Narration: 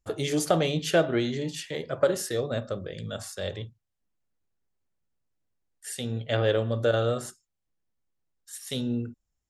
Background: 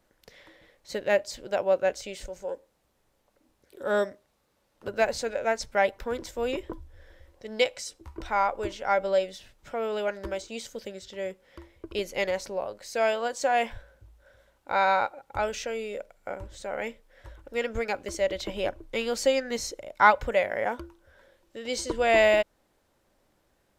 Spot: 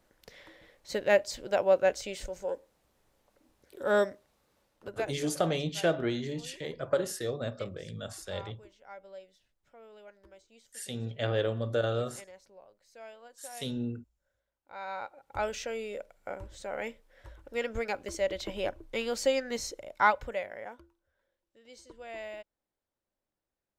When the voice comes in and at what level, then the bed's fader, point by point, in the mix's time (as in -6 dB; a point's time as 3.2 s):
4.90 s, -5.0 dB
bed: 4.6 s 0 dB
5.5 s -23 dB
14.6 s -23 dB
15.41 s -3.5 dB
19.93 s -3.5 dB
21.13 s -21.5 dB